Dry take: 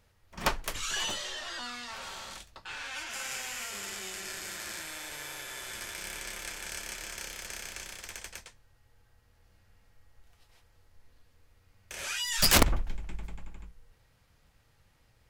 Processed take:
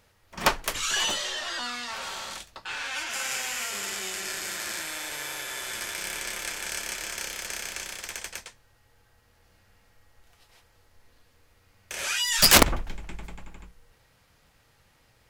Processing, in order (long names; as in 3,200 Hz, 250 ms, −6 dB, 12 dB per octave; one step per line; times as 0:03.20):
low-shelf EQ 140 Hz −8.5 dB
level +6.5 dB